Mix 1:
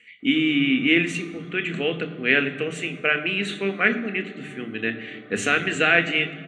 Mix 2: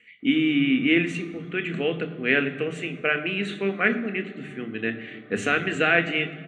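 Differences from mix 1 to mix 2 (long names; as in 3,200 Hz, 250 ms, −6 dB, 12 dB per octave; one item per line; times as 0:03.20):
speech: add high-shelf EQ 3,000 Hz −9 dB
background: send −6.0 dB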